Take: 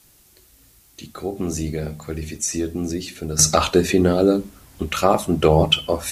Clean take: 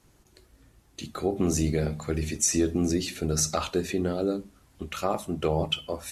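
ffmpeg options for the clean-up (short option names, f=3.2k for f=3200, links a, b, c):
-af "adeclick=t=4,agate=range=-21dB:threshold=-46dB,asetnsamples=n=441:p=0,asendcmd='3.39 volume volume -11dB',volume=0dB"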